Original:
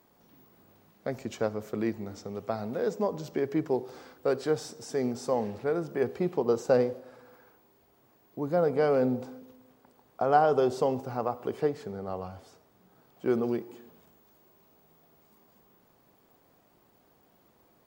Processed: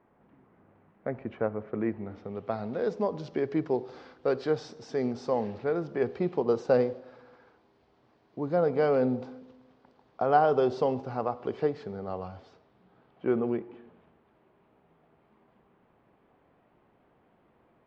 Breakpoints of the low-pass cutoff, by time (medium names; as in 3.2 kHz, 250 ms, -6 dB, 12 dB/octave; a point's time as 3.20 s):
low-pass 24 dB/octave
1.85 s 2.2 kHz
2.79 s 4.8 kHz
12.35 s 4.8 kHz
13.42 s 2.8 kHz